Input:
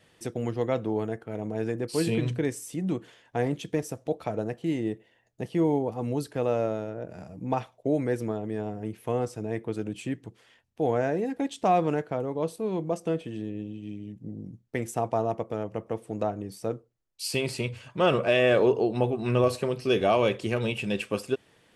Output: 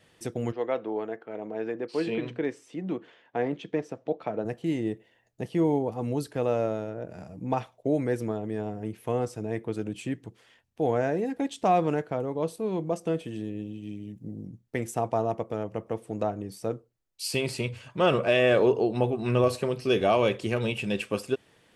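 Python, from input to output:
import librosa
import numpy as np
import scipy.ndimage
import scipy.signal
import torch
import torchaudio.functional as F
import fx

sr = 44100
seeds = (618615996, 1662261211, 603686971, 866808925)

y = fx.bandpass_edges(x, sr, low_hz=fx.line((0.51, 380.0), (4.44, 170.0)), high_hz=3100.0, at=(0.51, 4.44), fade=0.02)
y = fx.high_shelf(y, sr, hz=7000.0, db=8.5, at=(13.14, 14.46))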